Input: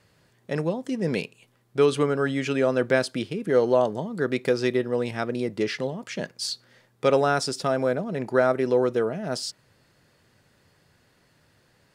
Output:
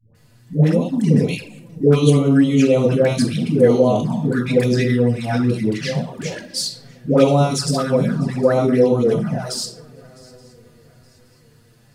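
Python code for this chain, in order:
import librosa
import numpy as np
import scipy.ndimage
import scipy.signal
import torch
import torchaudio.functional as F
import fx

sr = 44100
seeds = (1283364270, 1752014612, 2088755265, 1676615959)

p1 = fx.low_shelf(x, sr, hz=220.0, db=11.0)
p2 = p1 + fx.echo_swing(p1, sr, ms=871, ratio=3, feedback_pct=34, wet_db=-24.0, dry=0)
p3 = fx.room_shoebox(p2, sr, seeds[0], volume_m3=770.0, walls='furnished', distance_m=1.9)
p4 = fx.env_flanger(p3, sr, rest_ms=9.1, full_db=-13.0)
p5 = fx.high_shelf(p4, sr, hz=5700.0, db=11.0)
p6 = fx.dispersion(p5, sr, late='highs', ms=149.0, hz=560.0)
y = p6 * 10.0 ** (3.0 / 20.0)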